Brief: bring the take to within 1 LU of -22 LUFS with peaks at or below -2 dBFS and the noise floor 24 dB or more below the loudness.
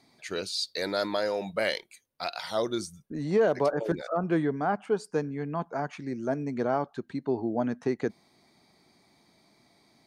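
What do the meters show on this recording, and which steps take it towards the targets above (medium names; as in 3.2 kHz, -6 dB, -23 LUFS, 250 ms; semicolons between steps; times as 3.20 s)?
loudness -30.0 LUFS; peak level -15.0 dBFS; loudness target -22.0 LUFS
-> trim +8 dB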